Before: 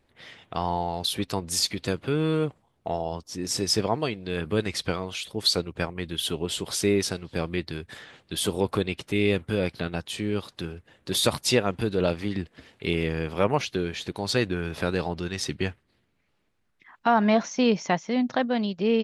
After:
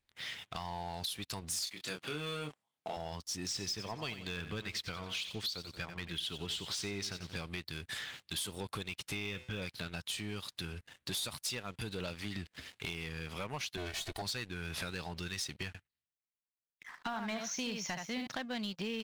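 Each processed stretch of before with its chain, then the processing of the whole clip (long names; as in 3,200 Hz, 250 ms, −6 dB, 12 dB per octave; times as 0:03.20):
0:01.64–0:02.97: high-pass filter 220 Hz + double-tracking delay 27 ms −5 dB
0:03.47–0:07.37: low-pass filter 5,100 Hz + repeating echo 90 ms, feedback 34%, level −14 dB
0:09.15–0:09.62: linear-phase brick-wall low-pass 3,700 Hz + hum removal 126.1 Hz, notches 37
0:13.77–0:14.22: lower of the sound and its delayed copy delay 2.7 ms + parametric band 660 Hz +9.5 dB 0.6 octaves
0:15.67–0:18.27: downward expander −60 dBFS + single-tap delay 74 ms −7 dB
whole clip: guitar amp tone stack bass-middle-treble 5-5-5; downward compressor 6 to 1, threshold −48 dBFS; leveller curve on the samples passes 3; level +2 dB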